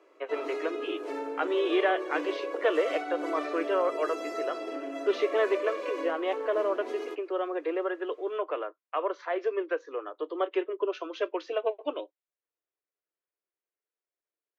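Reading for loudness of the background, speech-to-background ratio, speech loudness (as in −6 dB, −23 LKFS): −36.0 LKFS, 4.5 dB, −31.5 LKFS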